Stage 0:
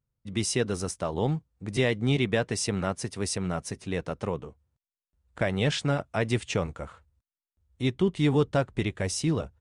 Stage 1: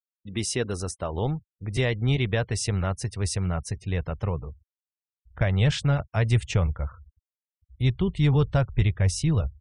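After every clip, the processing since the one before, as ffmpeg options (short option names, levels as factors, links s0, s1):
-af "afftfilt=real='re*gte(hypot(re,im),0.00501)':imag='im*gte(hypot(re,im),0.00501)':win_size=1024:overlap=0.75,asubboost=boost=10.5:cutoff=85"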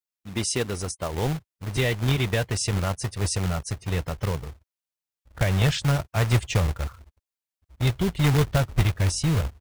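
-filter_complex "[0:a]acrossover=split=1900[s0][s1];[s0]acrusher=bits=2:mode=log:mix=0:aa=0.000001[s2];[s1]aecho=1:1:5.8:0.87[s3];[s2][s3]amix=inputs=2:normalize=0"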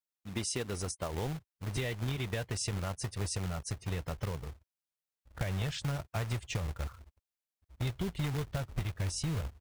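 -af "acompressor=threshold=0.0501:ratio=6,volume=0.562"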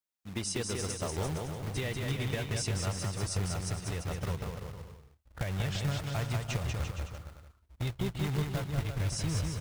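-af "aecho=1:1:190|342|463.6|560.9|638.7:0.631|0.398|0.251|0.158|0.1"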